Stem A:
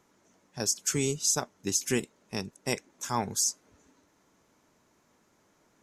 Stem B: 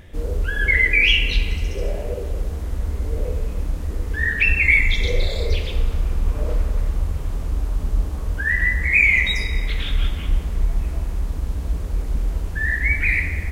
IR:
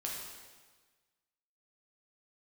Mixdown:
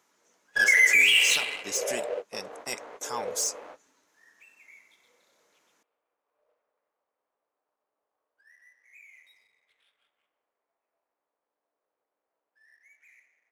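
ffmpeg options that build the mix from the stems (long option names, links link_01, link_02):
-filter_complex "[0:a]highpass=frequency=990:poles=1,asoftclip=type=tanh:threshold=-22.5dB,volume=1dB,asplit=2[link_01][link_02];[1:a]aeval=exprs='val(0)+0.0355*(sin(2*PI*60*n/s)+sin(2*PI*2*60*n/s)/2+sin(2*PI*3*60*n/s)/3+sin(2*PI*4*60*n/s)/4+sin(2*PI*5*60*n/s)/5)':channel_layout=same,highpass=frequency=540:width=0.5412,highpass=frequency=540:width=1.3066,adynamicsmooth=sensitivity=5:basefreq=1400,volume=2.5dB[link_03];[link_02]apad=whole_len=596062[link_04];[link_03][link_04]sidechaingate=range=-41dB:threshold=-59dB:ratio=16:detection=peak[link_05];[link_01][link_05]amix=inputs=2:normalize=0,alimiter=limit=-12dB:level=0:latency=1:release=38"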